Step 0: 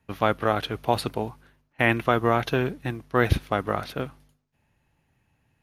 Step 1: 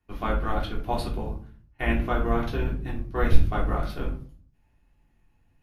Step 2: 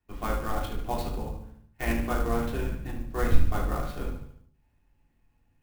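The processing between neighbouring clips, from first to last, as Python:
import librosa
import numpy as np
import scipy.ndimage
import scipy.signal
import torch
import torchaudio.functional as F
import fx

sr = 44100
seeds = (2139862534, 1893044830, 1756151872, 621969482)

y1 = fx.octave_divider(x, sr, octaves=2, level_db=4.0)
y1 = fx.rider(y1, sr, range_db=10, speed_s=2.0)
y1 = fx.room_shoebox(y1, sr, seeds[0], volume_m3=280.0, walls='furnished', distance_m=3.3)
y1 = y1 * 10.0 ** (-12.5 / 20.0)
y2 = fx.echo_feedback(y1, sr, ms=73, feedback_pct=48, wet_db=-9.0)
y2 = fx.clock_jitter(y2, sr, seeds[1], jitter_ms=0.029)
y2 = y2 * 10.0 ** (-3.5 / 20.0)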